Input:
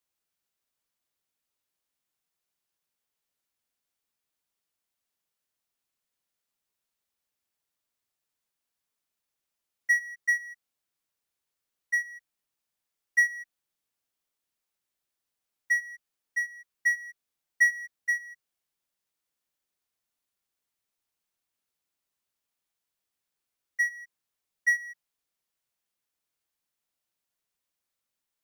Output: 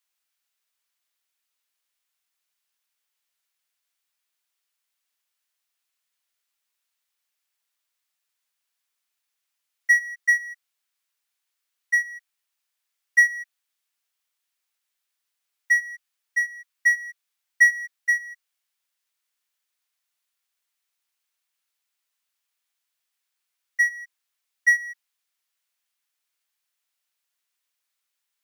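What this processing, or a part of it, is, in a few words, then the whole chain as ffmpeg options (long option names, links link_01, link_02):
filter by subtraction: -filter_complex "[0:a]asplit=2[link_01][link_02];[link_02]lowpass=2000,volume=-1[link_03];[link_01][link_03]amix=inputs=2:normalize=0,volume=4.5dB"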